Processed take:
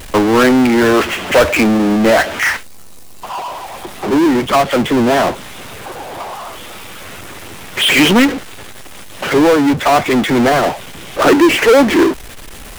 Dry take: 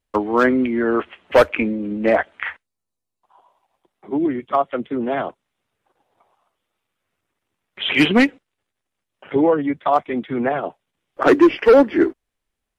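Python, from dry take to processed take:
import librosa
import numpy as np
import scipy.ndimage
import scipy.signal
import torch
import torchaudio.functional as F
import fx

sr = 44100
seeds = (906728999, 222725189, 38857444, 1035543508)

y = fx.power_curve(x, sr, exponent=0.35)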